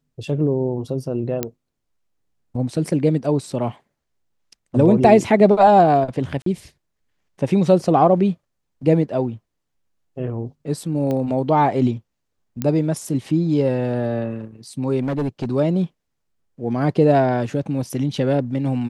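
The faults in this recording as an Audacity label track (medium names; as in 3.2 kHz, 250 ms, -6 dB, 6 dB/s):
1.430000	1.430000	pop -7 dBFS
6.420000	6.460000	dropout 43 ms
11.110000	11.110000	pop -14 dBFS
12.620000	12.620000	pop -10 dBFS
15.010000	15.460000	clipped -18.5 dBFS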